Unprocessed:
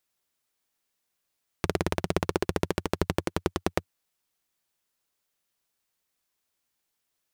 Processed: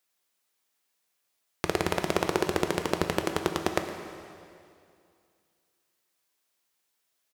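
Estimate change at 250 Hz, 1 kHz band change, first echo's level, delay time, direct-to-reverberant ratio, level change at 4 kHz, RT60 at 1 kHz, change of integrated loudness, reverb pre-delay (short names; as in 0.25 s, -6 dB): 0.0 dB, +3.0 dB, -16.5 dB, 0.113 s, 5.0 dB, +3.0 dB, 2.4 s, +1.0 dB, 4 ms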